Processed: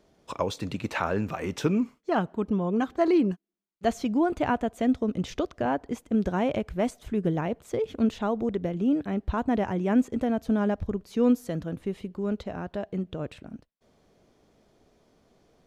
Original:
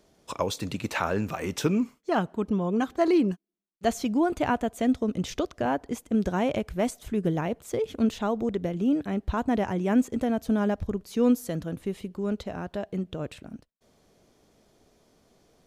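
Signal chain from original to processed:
high-shelf EQ 5,500 Hz −10 dB

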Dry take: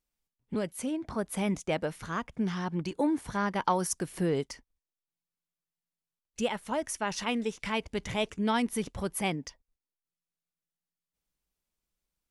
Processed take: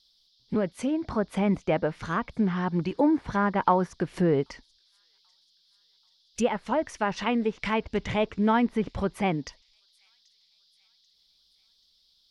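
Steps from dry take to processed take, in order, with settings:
treble cut that deepens with the level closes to 1,900 Hz, closed at −27.5 dBFS
delay with a high-pass on its return 785 ms, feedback 50%, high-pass 4,500 Hz, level −21 dB
noise in a band 3,300–5,300 Hz −71 dBFS
level +5.5 dB

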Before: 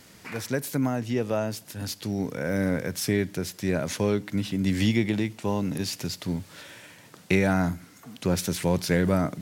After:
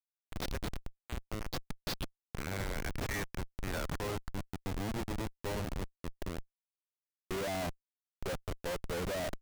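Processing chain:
band-pass filter sweep 3,800 Hz → 670 Hz, 0:01.73–0:05.33
comparator with hysteresis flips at −39 dBFS
level +4 dB

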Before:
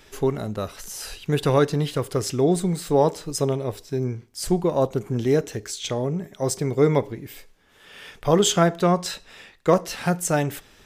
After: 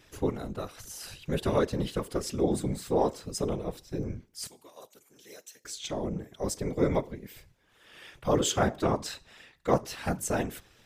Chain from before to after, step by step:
random phases in short frames
0:04.47–0:05.65: first difference
level −7.5 dB

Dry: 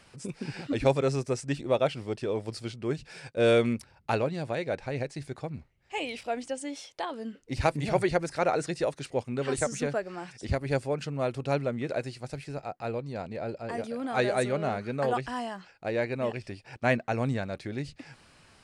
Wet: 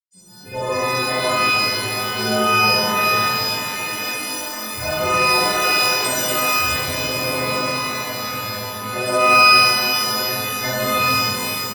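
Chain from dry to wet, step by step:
every partial snapped to a pitch grid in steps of 3 semitones
noise gate −38 dBFS, range −48 dB
in parallel at −6.5 dB: slack as between gear wheels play −34.5 dBFS
on the sum: phaser swept by the level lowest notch 180 Hz, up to 4,400 Hz, full sweep at −17 dBFS
time stretch by phase vocoder 0.63×
automatic gain control gain up to 9 dB
on a send: ambience of single reflections 10 ms −4 dB, 79 ms −6 dB
on the sum: reverb with rising layers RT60 3 s, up +12 semitones, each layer −2 dB, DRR −11.5 dB
level −16.5 dB

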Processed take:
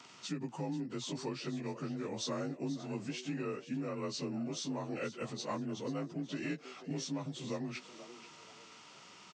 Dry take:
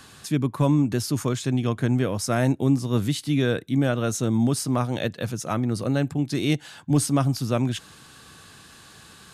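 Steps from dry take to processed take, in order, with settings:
partials spread apart or drawn together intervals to 88%
downward compressor, threshold −28 dBFS, peak gain reduction 12 dB
high-pass filter 200 Hz 12 dB per octave
on a send: echo with shifted repeats 485 ms, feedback 35%, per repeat +100 Hz, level −14.5 dB
on the sum: level −5 dB

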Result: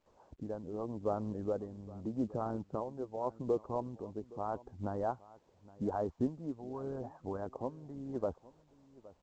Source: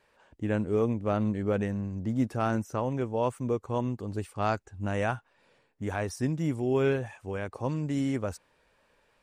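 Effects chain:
noise gate with hold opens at −58 dBFS
inverse Chebyshev low-pass filter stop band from 2,600 Hz, stop band 50 dB
harmonic and percussive parts rebalanced harmonic −16 dB
low-shelf EQ 96 Hz +2.5 dB
downward compressor 1.5 to 1, threshold −46 dBFS, peak gain reduction 7.5 dB
amplitude tremolo 0.83 Hz, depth 58%
single-tap delay 817 ms −20.5 dB
level +7 dB
mu-law 128 kbit/s 16,000 Hz

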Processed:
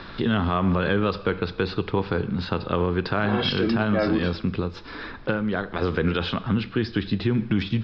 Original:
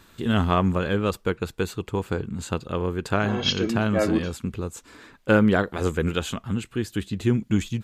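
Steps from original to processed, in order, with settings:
0:04.61–0:05.82: downward compressor 6 to 1, threshold −29 dBFS, peak gain reduction 15.5 dB
convolution reverb RT60 0.65 s, pre-delay 5 ms, DRR 14.5 dB
brickwall limiter −17.5 dBFS, peak gain reduction 10.5 dB
high-pass filter 83 Hz
background noise brown −53 dBFS
Chebyshev low-pass with heavy ripple 5,300 Hz, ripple 3 dB
multiband upward and downward compressor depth 40%
level +7 dB

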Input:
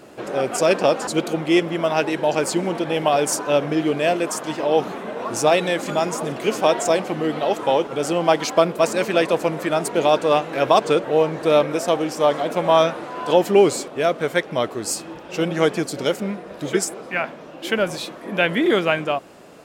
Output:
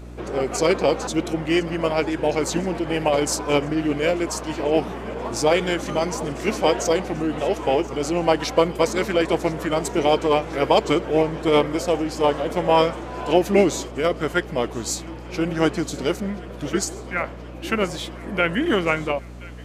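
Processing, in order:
formants moved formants −2 semitones
mains hum 60 Hz, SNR 16 dB
feedback echo with a high-pass in the loop 1,027 ms, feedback 73%, high-pass 1,200 Hz, level −19.5 dB
level −1.5 dB

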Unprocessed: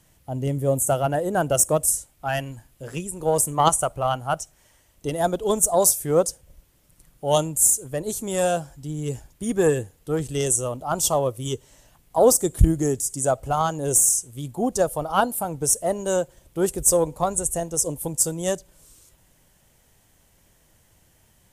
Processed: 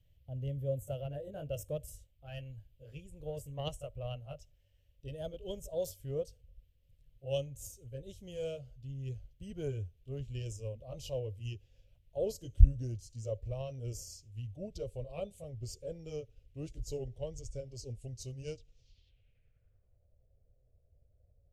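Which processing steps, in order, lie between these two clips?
pitch glide at a constant tempo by −4.5 semitones starting unshifted
drawn EQ curve 100 Hz 0 dB, 200 Hz −17 dB, 340 Hz −21 dB, 550 Hz −9 dB, 860 Hz −29 dB, 1,200 Hz −29 dB, 3,100 Hz −5 dB, 6,500 Hz −18 dB, 10,000 Hz −23 dB, 15,000 Hz −11 dB
low-pass filter sweep 14,000 Hz → 650 Hz, 0:18.25–0:20.14
high-shelf EQ 3,700 Hz −11.5 dB
level −3 dB

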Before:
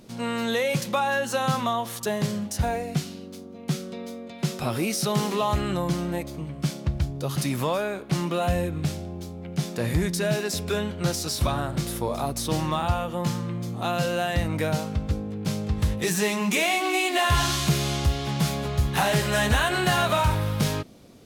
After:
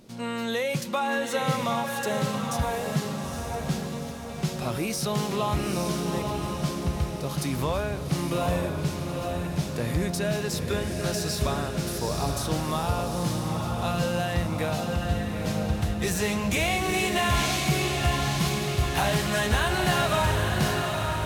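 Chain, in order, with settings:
feedback delay with all-pass diffusion 866 ms, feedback 49%, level −3.5 dB
level −3 dB

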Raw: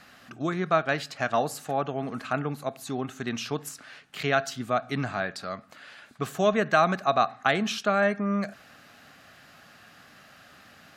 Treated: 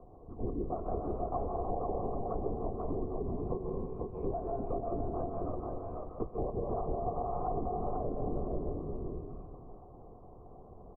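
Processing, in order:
running median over 25 samples
linear-prediction vocoder at 8 kHz whisper
on a send at −4.5 dB: convolution reverb RT60 1.3 s, pre-delay 130 ms
on the sum: downward compressor 6 to 1, threshold −27 dBFS, peak gain reduction 9.5 dB
spectral tilt −2.5 dB per octave
treble cut that deepens with the level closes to 700 Hz, closed at −20 dBFS
single-tap delay 491 ms −4 dB
low-pass that shuts in the quiet parts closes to 610 Hz, open at −21.5 dBFS
formant resonators in series a
low shelf with overshoot 540 Hz +7.5 dB, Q 3
multiband upward and downward compressor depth 40%
level +6.5 dB

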